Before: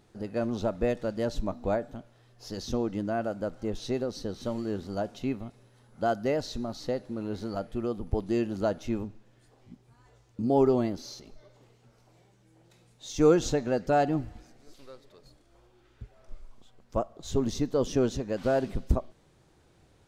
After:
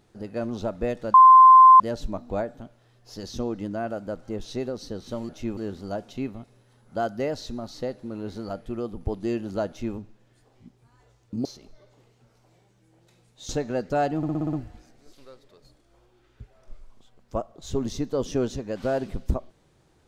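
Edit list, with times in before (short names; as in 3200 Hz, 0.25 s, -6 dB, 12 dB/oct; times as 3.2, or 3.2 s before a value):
1.14 add tone 1040 Hz -7.5 dBFS 0.66 s
8.74–9.02 copy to 4.63
10.51–11.08 cut
13.12–13.46 cut
14.14 stutter 0.06 s, 7 plays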